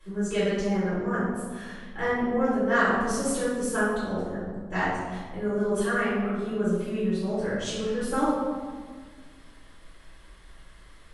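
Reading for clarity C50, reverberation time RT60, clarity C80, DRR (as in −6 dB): −2.0 dB, 1.6 s, 1.0 dB, −14.0 dB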